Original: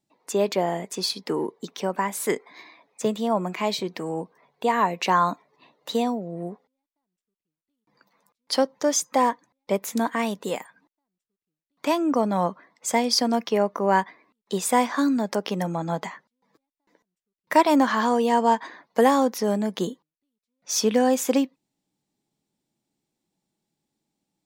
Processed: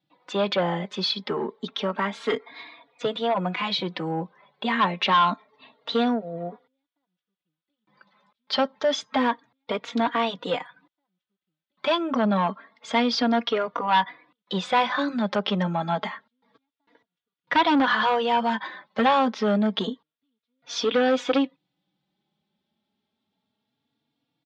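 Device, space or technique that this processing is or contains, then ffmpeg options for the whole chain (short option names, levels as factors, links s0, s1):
barber-pole flanger into a guitar amplifier: -filter_complex "[0:a]asplit=2[s0][s1];[s1]adelay=3.6,afreqshift=0.28[s2];[s0][s2]amix=inputs=2:normalize=1,asoftclip=type=tanh:threshold=0.0891,highpass=83,equalizer=f=360:t=q:w=4:g=-6,equalizer=f=1400:t=q:w=4:g=5,equalizer=f=3400:t=q:w=4:g=8,lowpass=f=4200:w=0.5412,lowpass=f=4200:w=1.3066,volume=2"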